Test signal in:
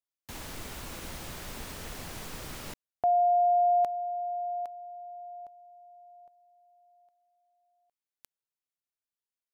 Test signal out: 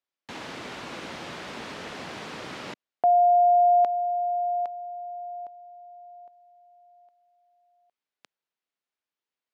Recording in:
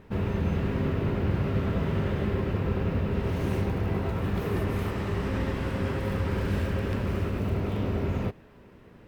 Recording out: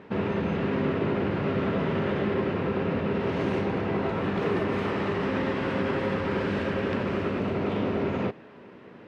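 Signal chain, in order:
in parallel at +1.5 dB: brickwall limiter −23.5 dBFS
on the sum: band-pass filter 200–3,900 Hz

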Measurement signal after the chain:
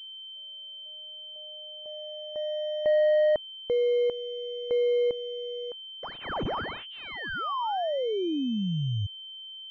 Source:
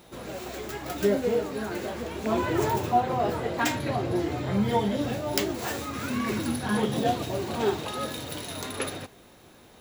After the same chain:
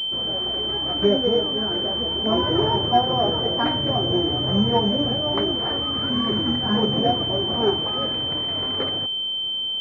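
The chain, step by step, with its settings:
switching amplifier with a slow clock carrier 3,100 Hz
level +4.5 dB

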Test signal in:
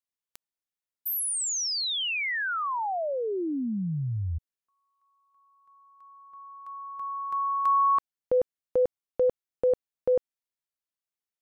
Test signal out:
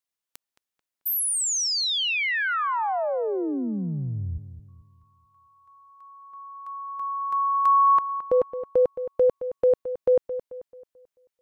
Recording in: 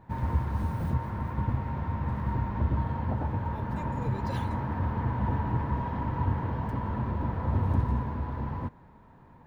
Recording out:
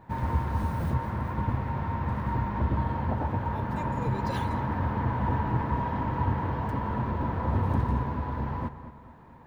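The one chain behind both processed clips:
low-shelf EQ 230 Hz −5 dB
on a send: feedback echo with a low-pass in the loop 219 ms, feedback 41%, low-pass 3,000 Hz, level −12 dB
on the sum: level +4 dB

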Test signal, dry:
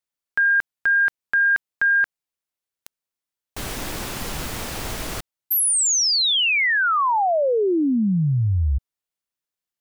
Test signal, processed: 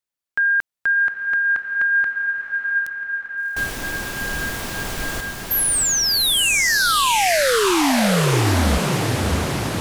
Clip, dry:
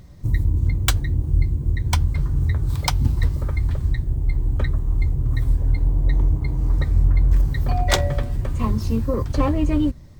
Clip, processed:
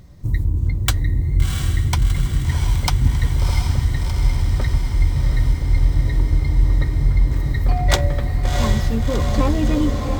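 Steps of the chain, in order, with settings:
feedback delay with all-pass diffusion 700 ms, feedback 71%, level −4 dB

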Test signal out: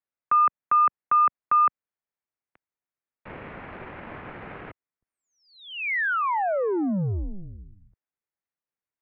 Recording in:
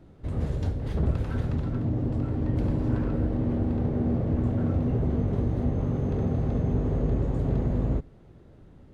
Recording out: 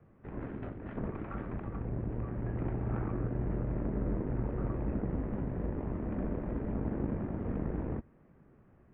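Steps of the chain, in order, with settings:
harmonic generator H 4 −19 dB, 7 −34 dB, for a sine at −13 dBFS
single-sideband voice off tune −190 Hz 260–2,500 Hz
level −1 dB

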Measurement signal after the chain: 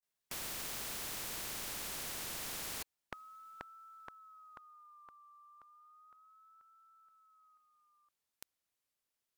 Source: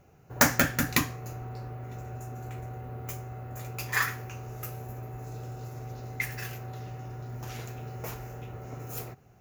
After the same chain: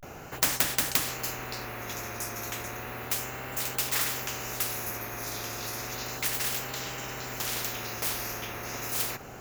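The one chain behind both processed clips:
pitch vibrato 0.33 Hz 97 cents
floating-point word with a short mantissa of 8 bits
every bin compressed towards the loudest bin 4 to 1

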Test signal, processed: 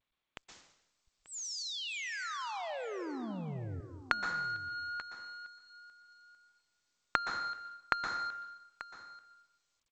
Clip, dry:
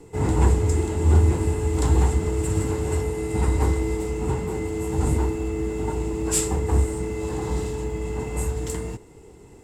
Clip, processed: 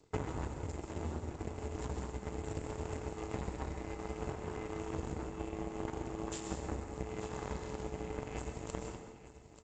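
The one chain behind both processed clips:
in parallel at +3 dB: brickwall limiter −16 dBFS
on the sum: downward compressor 10 to 1, threshold −26 dBFS
harmonic generator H 2 −44 dB, 4 −44 dB, 7 −17 dB, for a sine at −8.5 dBFS
on a send: single-tap delay 887 ms −14.5 dB
on the sum: dense smooth reverb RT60 0.82 s, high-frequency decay 0.9×, pre-delay 110 ms, DRR 6 dB
level +1 dB
G.722 64 kbit/s 16,000 Hz

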